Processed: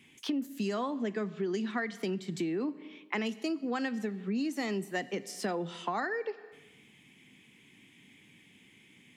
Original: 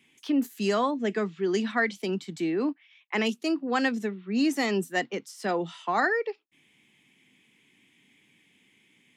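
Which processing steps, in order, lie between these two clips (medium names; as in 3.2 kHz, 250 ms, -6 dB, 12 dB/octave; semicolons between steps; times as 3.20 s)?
bass shelf 170 Hz +8.5 dB; Schroeder reverb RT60 1 s, combs from 29 ms, DRR 18 dB; compression 6:1, threshold -34 dBFS, peak gain reduction 15 dB; trim +3 dB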